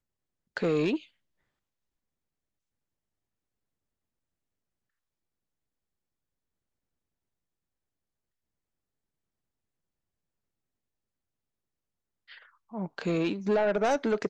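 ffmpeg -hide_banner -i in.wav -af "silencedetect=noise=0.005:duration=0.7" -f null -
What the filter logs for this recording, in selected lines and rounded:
silence_start: 1.04
silence_end: 12.30 | silence_duration: 11.26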